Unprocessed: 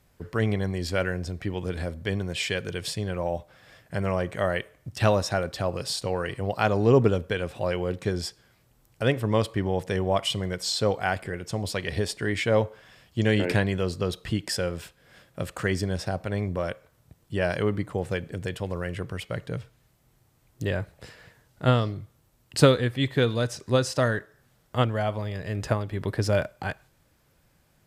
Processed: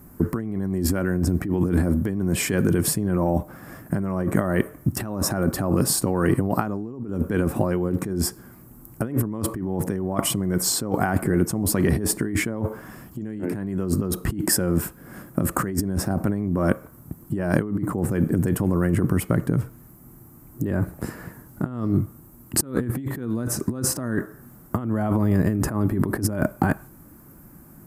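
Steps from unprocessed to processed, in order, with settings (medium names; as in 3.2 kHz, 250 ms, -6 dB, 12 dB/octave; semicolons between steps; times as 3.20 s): FFT filter 110 Hz 0 dB, 230 Hz +10 dB, 330 Hz +9 dB, 490 Hz -5 dB, 1.2 kHz +1 dB, 3.5 kHz -20 dB, 13 kHz +9 dB; compressor with a negative ratio -31 dBFS, ratio -1; trim +7 dB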